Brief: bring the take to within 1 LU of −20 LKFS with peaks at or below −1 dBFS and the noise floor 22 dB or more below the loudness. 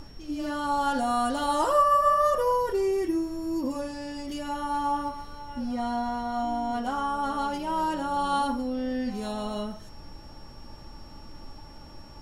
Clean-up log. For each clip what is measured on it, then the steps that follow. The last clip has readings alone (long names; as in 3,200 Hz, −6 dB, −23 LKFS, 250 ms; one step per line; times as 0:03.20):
interfering tone 5,500 Hz; level of the tone −54 dBFS; background noise floor −46 dBFS; target noise floor −50 dBFS; integrated loudness −27.5 LKFS; sample peak −11.5 dBFS; target loudness −20.0 LKFS
→ notch filter 5,500 Hz, Q 30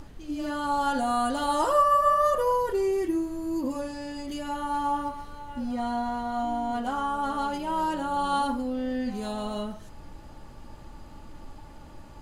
interfering tone none found; background noise floor −46 dBFS; target noise floor −50 dBFS
→ noise reduction from a noise print 6 dB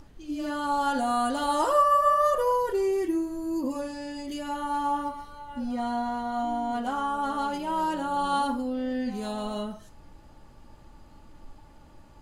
background noise floor −52 dBFS; integrated loudness −27.5 LKFS; sample peak −11.5 dBFS; target loudness −20.0 LKFS
→ level +7.5 dB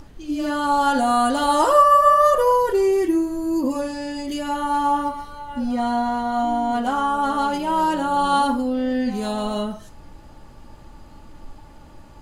integrated loudness −20.0 LKFS; sample peak −4.0 dBFS; background noise floor −45 dBFS